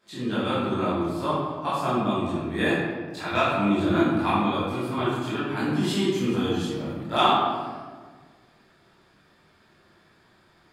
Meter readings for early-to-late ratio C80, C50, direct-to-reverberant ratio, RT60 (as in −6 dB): 1.0 dB, −2.5 dB, −12.0 dB, 1.5 s